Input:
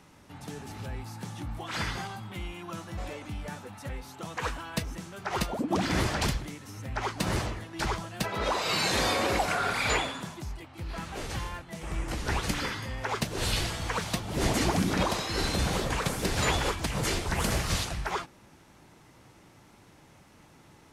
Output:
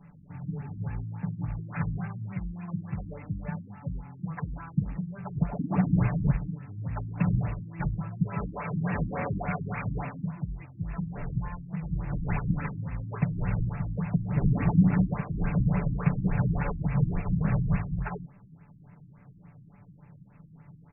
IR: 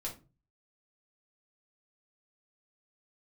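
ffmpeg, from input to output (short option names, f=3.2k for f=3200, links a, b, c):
-af "lowshelf=f=240:t=q:w=3:g=7,aecho=1:1:6.9:0.66,aresample=8000,acrusher=bits=4:mode=log:mix=0:aa=0.000001,aresample=44100,flanger=delay=3.6:depth=9.1:regen=-80:speed=0.78:shape=triangular,afftfilt=real='re*lt(b*sr/1024,320*pow(2800/320,0.5+0.5*sin(2*PI*3.5*pts/sr)))':imag='im*lt(b*sr/1024,320*pow(2800/320,0.5+0.5*sin(2*PI*3.5*pts/sr)))':win_size=1024:overlap=0.75"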